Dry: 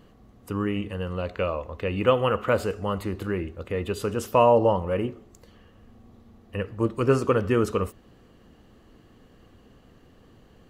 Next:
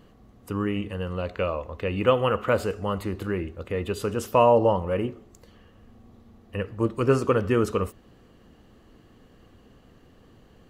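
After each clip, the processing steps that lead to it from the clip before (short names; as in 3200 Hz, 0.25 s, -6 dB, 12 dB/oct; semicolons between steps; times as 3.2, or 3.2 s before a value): nothing audible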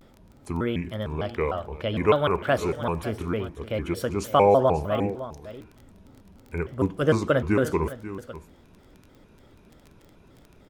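crackle 14/s -37 dBFS; echo 0.549 s -14 dB; shaped vibrato square 3.3 Hz, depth 250 cents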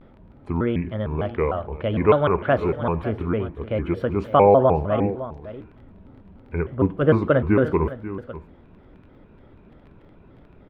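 air absorption 480 m; gain +5 dB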